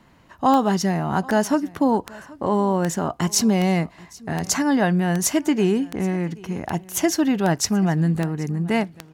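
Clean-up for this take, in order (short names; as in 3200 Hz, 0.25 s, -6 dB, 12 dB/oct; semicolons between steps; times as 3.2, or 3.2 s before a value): de-click; inverse comb 0.78 s -22.5 dB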